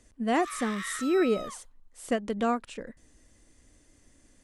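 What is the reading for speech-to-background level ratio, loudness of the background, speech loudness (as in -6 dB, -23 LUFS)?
10.0 dB, -39.0 LUFS, -29.0 LUFS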